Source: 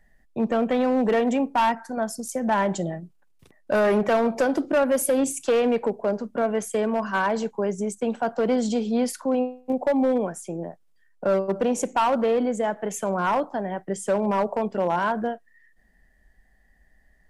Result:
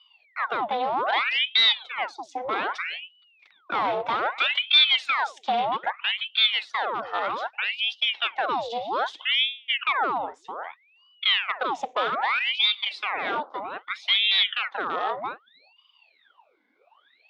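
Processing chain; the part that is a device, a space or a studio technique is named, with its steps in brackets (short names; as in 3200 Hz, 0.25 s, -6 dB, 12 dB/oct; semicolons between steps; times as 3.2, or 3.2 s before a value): voice changer toy (ring modulator with a swept carrier 1600 Hz, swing 85%, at 0.63 Hz; speaker cabinet 490–4500 Hz, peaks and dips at 780 Hz +4 dB, 1700 Hz -5 dB, 3600 Hz +10 dB)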